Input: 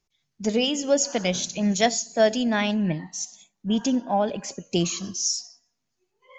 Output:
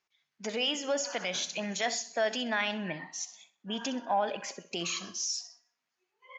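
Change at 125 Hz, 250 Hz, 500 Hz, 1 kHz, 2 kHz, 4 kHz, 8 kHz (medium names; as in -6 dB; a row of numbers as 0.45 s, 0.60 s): -16.0 dB, -14.0 dB, -9.5 dB, -5.0 dB, -2.5 dB, -4.5 dB, no reading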